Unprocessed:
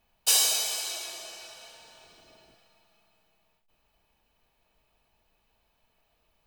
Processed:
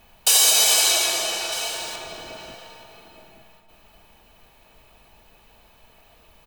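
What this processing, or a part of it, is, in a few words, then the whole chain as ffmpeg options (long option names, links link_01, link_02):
mastering chain: -filter_complex "[0:a]equalizer=frequency=5000:width_type=o:width=0.38:gain=-2.5,acompressor=threshold=-31dB:ratio=2,alimiter=level_in=22dB:limit=-1dB:release=50:level=0:latency=1,asettb=1/sr,asplit=3[link_01][link_02][link_03];[link_01]atrim=end=1.524[link_04];[link_02]atrim=start=1.52:end=1.96,asetpts=PTS-STARTPTS,afade=type=in:duration=0.004:curve=qsin,afade=type=out:start_time=0.436:duration=0.004:curve=qsin,highshelf=frequency=4600:gain=8.5[link_05];[link_03]atrim=start=1.956[link_06];[link_04][link_05]acrossfade=duration=0.004:curve1=hsin:curve2=qsin[link_07];[link_07][link_06]acrossfade=duration=0.004:curve1=qsin:curve2=hsin,asplit=2[link_08][link_09];[link_09]adelay=874.6,volume=-9dB,highshelf=frequency=4000:gain=-19.7[link_10];[link_08][link_10]amix=inputs=2:normalize=0,volume=-4.5dB"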